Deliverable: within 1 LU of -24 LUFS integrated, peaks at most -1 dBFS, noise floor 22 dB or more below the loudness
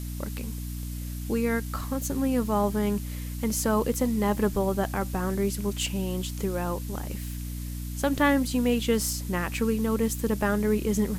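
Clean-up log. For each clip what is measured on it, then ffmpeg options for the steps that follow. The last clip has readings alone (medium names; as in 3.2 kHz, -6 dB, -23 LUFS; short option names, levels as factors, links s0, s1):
hum 60 Hz; highest harmonic 300 Hz; hum level -32 dBFS; noise floor -34 dBFS; noise floor target -50 dBFS; loudness -27.5 LUFS; peak level -10.0 dBFS; loudness target -24.0 LUFS
-> -af "bandreject=f=60:t=h:w=6,bandreject=f=120:t=h:w=6,bandreject=f=180:t=h:w=6,bandreject=f=240:t=h:w=6,bandreject=f=300:t=h:w=6"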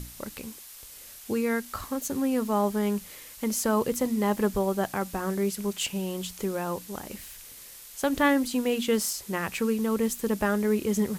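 hum not found; noise floor -46 dBFS; noise floor target -50 dBFS
-> -af "afftdn=nr=6:nf=-46"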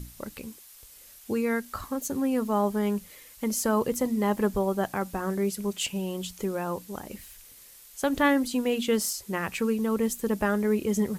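noise floor -51 dBFS; loudness -28.0 LUFS; peak level -11.0 dBFS; loudness target -24.0 LUFS
-> -af "volume=1.58"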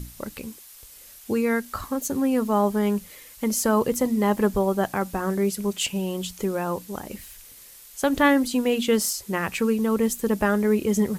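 loudness -24.0 LUFS; peak level -7.5 dBFS; noise floor -47 dBFS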